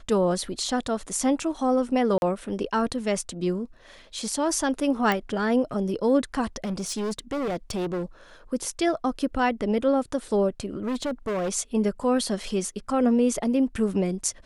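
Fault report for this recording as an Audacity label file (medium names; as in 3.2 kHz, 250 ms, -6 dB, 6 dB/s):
2.180000	2.220000	dropout 41 ms
5.120000	5.120000	pop
6.640000	8.030000	clipped -25 dBFS
10.750000	11.500000	clipped -24 dBFS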